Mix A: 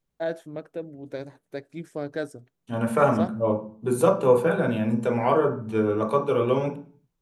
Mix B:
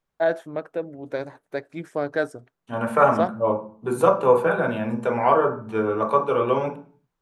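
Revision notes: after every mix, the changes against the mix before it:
second voice -4.5 dB; master: add peaking EQ 1.1 kHz +10.5 dB 2.5 oct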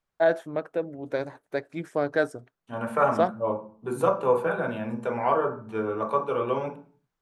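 second voice -5.5 dB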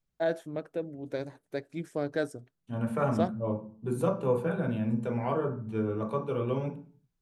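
second voice: add tone controls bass +8 dB, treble -3 dB; master: add peaking EQ 1.1 kHz -10.5 dB 2.5 oct

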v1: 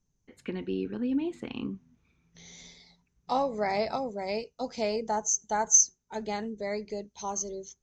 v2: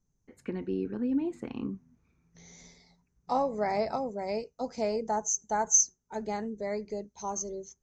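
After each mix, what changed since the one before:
master: add peaking EQ 3.3 kHz -12 dB 0.94 oct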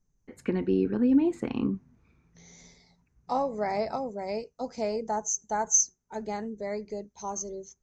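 first voice +7.0 dB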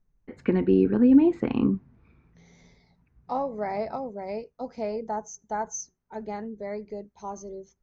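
first voice +5.5 dB; master: add distance through air 200 m

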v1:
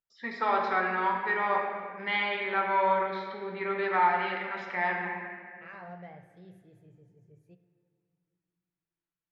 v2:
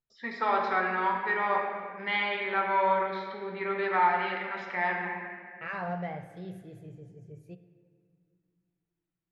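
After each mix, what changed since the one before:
second voice +10.5 dB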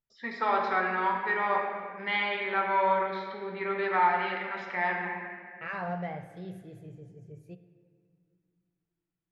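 no change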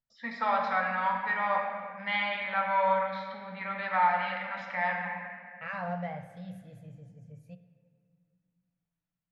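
master: add Chebyshev band-stop 260–520 Hz, order 2

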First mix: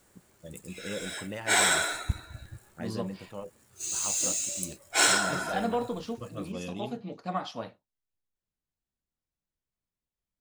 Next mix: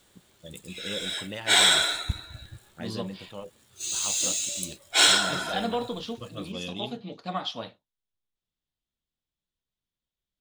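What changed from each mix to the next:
master: add peaking EQ 3.5 kHz +12.5 dB 0.65 oct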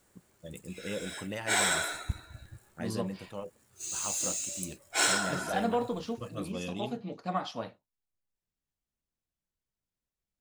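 first voice: add treble shelf 4.3 kHz +7.5 dB; background -4.0 dB; master: add peaking EQ 3.5 kHz -12.5 dB 0.65 oct

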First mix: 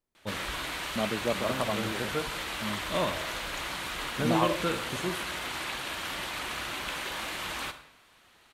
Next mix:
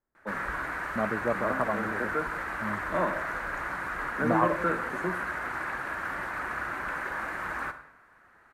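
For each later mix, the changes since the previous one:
first voice: add steep high-pass 160 Hz 72 dB/octave; master: add resonant high shelf 2.3 kHz -12.5 dB, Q 3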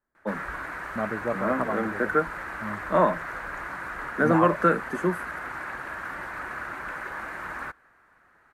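first voice +9.5 dB; reverb: off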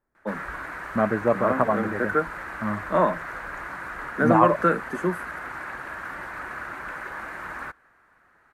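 second voice +7.5 dB

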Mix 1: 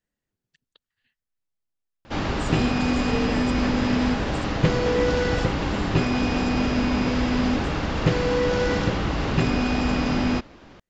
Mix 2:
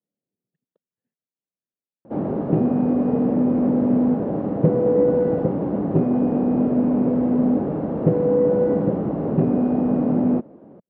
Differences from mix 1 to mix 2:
background +5.5 dB; master: add Chebyshev band-pass 170–580 Hz, order 2

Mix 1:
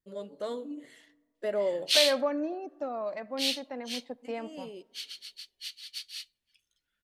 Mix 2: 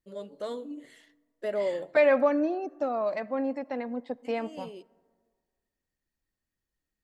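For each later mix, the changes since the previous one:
second voice +5.5 dB; background: muted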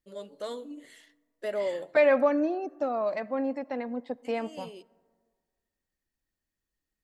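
first voice: add tilt EQ +1.5 dB/octave

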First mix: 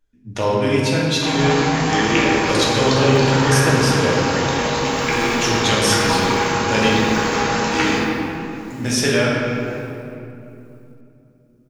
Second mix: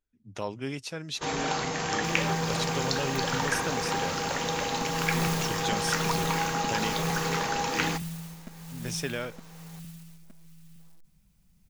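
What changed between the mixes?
speech -8.0 dB; second sound +9.0 dB; reverb: off

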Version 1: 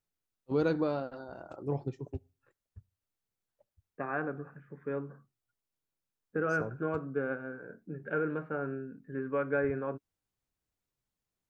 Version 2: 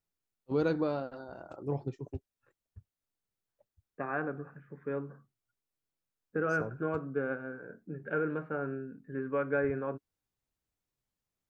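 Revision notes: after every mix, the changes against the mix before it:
reverb: off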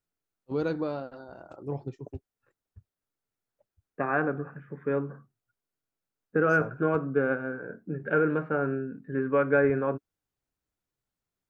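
second voice +7.5 dB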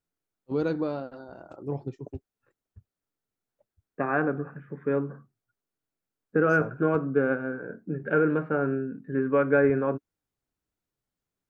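master: add peaking EQ 260 Hz +3 dB 1.7 oct

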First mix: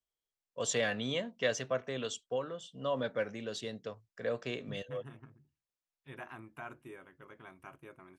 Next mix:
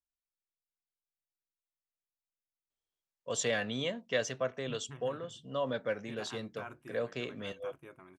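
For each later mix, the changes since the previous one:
first voice: entry +2.70 s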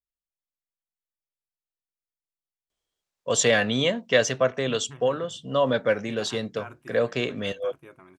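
first voice +11.5 dB; second voice +4.0 dB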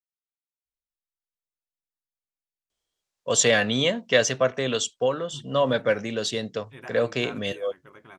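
second voice: entry +0.65 s; master: add peaking EQ 5.9 kHz +3 dB 1.9 oct

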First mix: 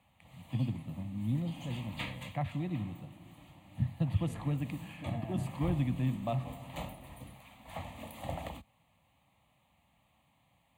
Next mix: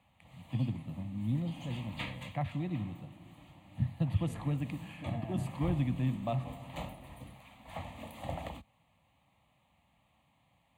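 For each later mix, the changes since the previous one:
background: add treble shelf 8.8 kHz -7 dB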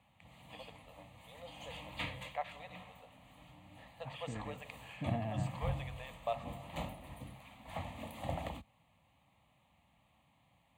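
first voice: add brick-wall FIR band-pass 410–8700 Hz; second voice +5.0 dB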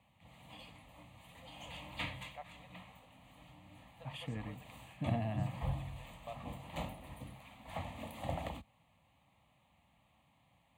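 first voice -10.5 dB; second voice: add tone controls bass +3 dB, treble +12 dB

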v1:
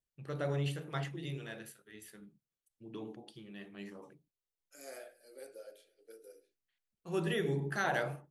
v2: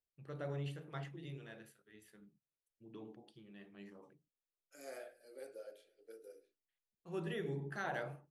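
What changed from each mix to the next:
first voice -7.0 dB; master: add treble shelf 3.7 kHz -7 dB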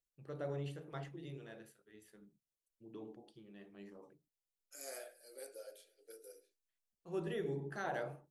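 first voice: add tilt EQ -3.5 dB/octave; master: add tone controls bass -13 dB, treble +12 dB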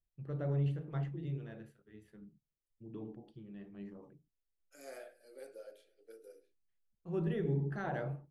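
master: add tone controls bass +13 dB, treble -12 dB

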